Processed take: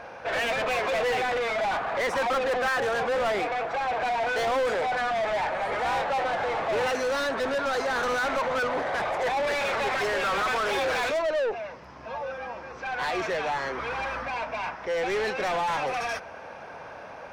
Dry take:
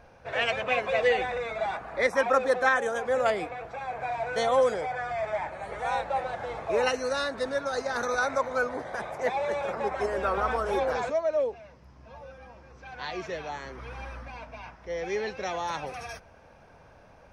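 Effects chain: 9.47–11.22 weighting filter D; overdrive pedal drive 31 dB, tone 2400 Hz, clips at -11.5 dBFS; gain -7.5 dB

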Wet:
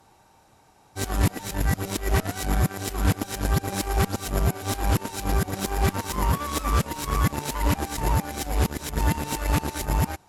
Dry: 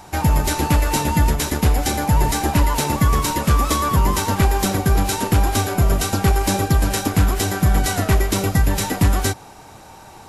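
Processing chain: whole clip reversed; added harmonics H 3 -14 dB, 7 -33 dB, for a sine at -6 dBFS; gain -3.5 dB

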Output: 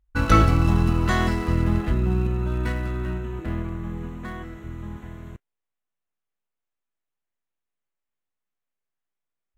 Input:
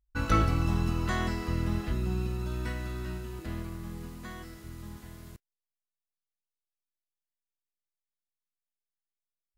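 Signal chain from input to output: Wiener smoothing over 9 samples; gain +8.5 dB

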